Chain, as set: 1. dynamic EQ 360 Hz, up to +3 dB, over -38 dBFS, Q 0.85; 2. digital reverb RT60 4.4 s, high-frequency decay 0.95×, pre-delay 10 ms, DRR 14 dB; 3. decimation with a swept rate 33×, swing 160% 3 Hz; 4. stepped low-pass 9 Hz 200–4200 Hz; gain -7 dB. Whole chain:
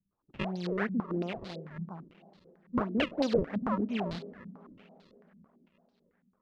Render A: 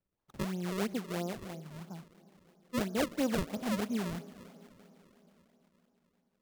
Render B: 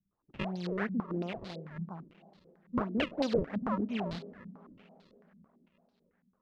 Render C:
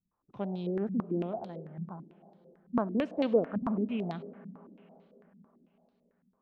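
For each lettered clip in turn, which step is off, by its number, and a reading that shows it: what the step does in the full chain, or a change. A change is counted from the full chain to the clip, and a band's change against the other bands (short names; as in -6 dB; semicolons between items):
4, 4 kHz band +2.0 dB; 1, loudness change -2.0 LU; 3, 2 kHz band -8.5 dB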